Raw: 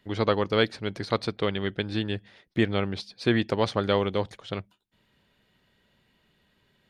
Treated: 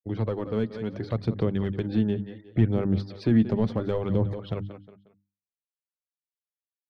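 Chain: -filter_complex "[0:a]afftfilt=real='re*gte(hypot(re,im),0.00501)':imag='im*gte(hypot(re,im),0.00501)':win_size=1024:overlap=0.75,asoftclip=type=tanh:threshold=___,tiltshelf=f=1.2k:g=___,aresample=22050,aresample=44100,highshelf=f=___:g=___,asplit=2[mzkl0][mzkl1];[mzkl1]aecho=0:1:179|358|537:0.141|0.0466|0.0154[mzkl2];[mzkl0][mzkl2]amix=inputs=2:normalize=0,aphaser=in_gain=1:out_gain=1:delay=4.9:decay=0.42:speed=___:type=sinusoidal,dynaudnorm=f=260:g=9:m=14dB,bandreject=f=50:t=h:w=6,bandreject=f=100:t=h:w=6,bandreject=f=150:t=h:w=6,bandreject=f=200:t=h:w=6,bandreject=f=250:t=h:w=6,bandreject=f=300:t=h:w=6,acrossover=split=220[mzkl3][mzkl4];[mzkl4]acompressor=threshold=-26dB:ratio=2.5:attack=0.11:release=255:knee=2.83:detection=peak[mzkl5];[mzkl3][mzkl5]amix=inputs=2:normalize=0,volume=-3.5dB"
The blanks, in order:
-11.5dB, 7, 6.8k, -8.5, 0.7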